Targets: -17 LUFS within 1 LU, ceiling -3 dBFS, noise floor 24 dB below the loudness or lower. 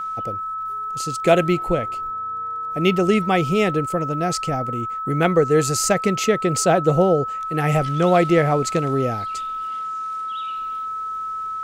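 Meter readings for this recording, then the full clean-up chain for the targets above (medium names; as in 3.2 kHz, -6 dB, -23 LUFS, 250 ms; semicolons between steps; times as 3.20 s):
tick rate 42 per s; steady tone 1.3 kHz; tone level -25 dBFS; loudness -21.0 LUFS; peak level -3.5 dBFS; loudness target -17.0 LUFS
-> de-click; band-stop 1.3 kHz, Q 30; trim +4 dB; peak limiter -3 dBFS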